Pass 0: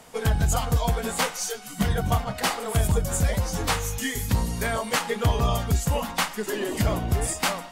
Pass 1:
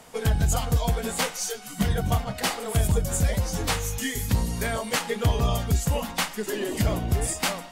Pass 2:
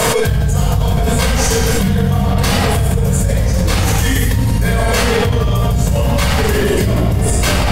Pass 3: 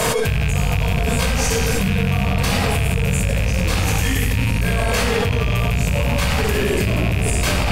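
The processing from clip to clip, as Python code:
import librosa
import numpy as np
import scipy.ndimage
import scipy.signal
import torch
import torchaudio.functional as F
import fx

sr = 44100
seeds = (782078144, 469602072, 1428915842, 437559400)

y1 = fx.dynamic_eq(x, sr, hz=1100.0, q=1.1, threshold_db=-39.0, ratio=4.0, max_db=-4)
y2 = fx.room_shoebox(y1, sr, seeds[0], volume_m3=2800.0, walls='mixed', distance_m=5.4)
y2 = fx.env_flatten(y2, sr, amount_pct=100)
y2 = F.gain(torch.from_numpy(y2), -7.0).numpy()
y3 = fx.rattle_buzz(y2, sr, strikes_db=-17.0, level_db=-9.0)
y3 = F.gain(torch.from_numpy(y3), -5.0).numpy()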